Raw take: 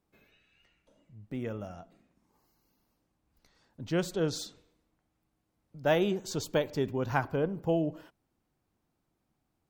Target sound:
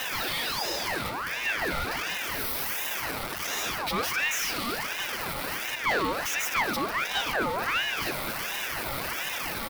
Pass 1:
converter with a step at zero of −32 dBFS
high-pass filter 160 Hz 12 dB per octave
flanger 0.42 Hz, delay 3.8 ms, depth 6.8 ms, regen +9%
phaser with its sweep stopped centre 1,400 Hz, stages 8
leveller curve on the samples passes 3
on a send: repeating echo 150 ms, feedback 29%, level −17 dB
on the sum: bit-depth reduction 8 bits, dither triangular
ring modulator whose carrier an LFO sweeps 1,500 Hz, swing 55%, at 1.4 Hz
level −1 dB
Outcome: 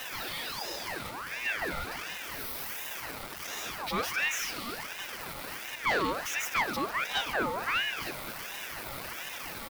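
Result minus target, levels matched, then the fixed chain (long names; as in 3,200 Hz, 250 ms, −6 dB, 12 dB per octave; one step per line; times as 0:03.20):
converter with a step at zero: distortion −5 dB
converter with a step at zero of −24 dBFS
high-pass filter 160 Hz 12 dB per octave
flanger 0.42 Hz, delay 3.8 ms, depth 6.8 ms, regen +9%
phaser with its sweep stopped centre 1,400 Hz, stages 8
leveller curve on the samples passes 3
on a send: repeating echo 150 ms, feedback 29%, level −17 dB
on the sum: bit-depth reduction 8 bits, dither triangular
ring modulator whose carrier an LFO sweeps 1,500 Hz, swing 55%, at 1.4 Hz
level −1 dB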